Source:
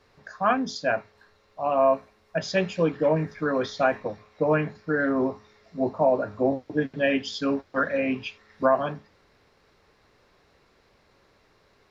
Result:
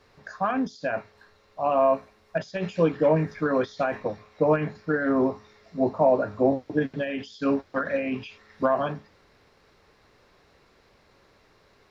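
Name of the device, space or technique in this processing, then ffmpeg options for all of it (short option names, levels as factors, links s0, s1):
de-esser from a sidechain: -filter_complex "[0:a]asplit=2[s0][s1];[s1]highpass=5600,apad=whole_len=525118[s2];[s0][s2]sidechaincompress=threshold=0.00251:ratio=12:attack=4.2:release=49,volume=1.26"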